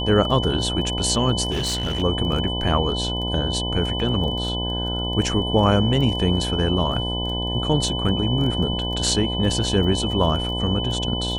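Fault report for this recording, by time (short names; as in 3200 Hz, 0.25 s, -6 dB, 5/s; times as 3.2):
buzz 60 Hz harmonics 17 -27 dBFS
crackle 11/s -28 dBFS
tone 3000 Hz -27 dBFS
1.5–2.03 clipped -20 dBFS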